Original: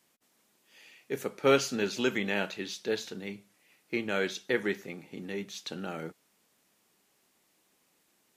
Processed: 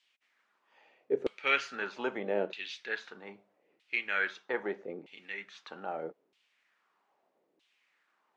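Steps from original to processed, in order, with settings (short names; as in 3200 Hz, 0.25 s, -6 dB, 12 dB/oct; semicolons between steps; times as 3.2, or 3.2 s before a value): LFO band-pass saw down 0.79 Hz 370–3400 Hz; air absorption 60 m; gain +7 dB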